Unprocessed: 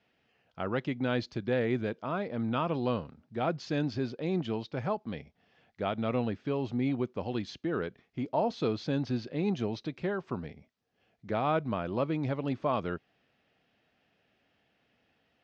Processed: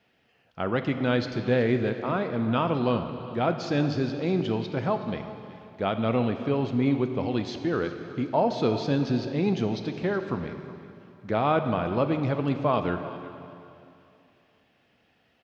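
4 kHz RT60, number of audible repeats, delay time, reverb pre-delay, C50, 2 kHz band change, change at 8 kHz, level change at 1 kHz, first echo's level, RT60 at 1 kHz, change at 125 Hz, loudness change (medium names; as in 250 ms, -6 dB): 2.5 s, 2, 371 ms, 7 ms, 8.0 dB, +5.5 dB, no reading, +6.0 dB, -17.5 dB, 2.7 s, +6.5 dB, +6.0 dB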